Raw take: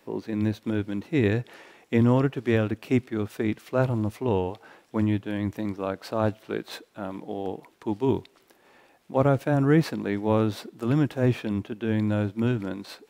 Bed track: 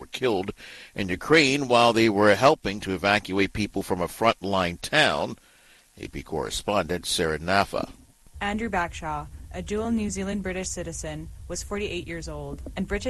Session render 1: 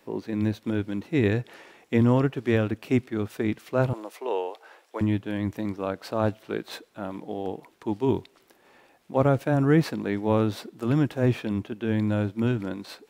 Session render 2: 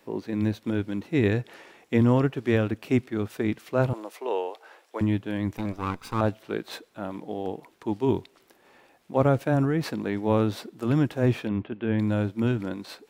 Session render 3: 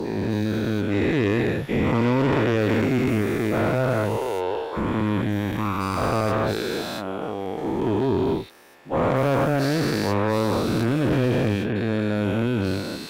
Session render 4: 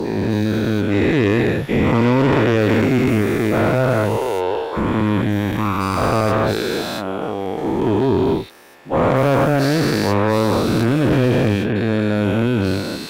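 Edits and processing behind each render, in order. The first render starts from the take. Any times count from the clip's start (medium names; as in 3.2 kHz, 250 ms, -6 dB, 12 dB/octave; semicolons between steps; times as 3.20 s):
3.93–5.01 s: high-pass 410 Hz 24 dB/octave
5.57–6.21 s: comb filter that takes the minimum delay 0.82 ms; 9.65–10.25 s: compression, threshold -21 dBFS; 11.48–11.99 s: low-pass 3.2 kHz 24 dB/octave
every event in the spectrogram widened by 480 ms; valve stage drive 15 dB, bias 0.4
trim +5.5 dB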